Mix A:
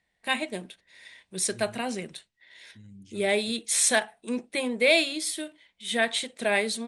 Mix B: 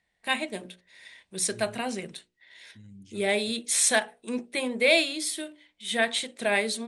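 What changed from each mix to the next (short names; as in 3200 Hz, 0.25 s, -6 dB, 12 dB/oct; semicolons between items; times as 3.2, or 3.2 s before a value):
first voice: add notches 60/120/180/240/300/360/420/480/540/600 Hz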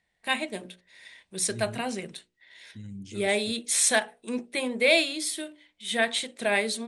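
second voice +8.0 dB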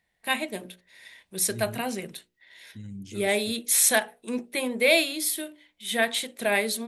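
master: remove Chebyshev low-pass 9300 Hz, order 4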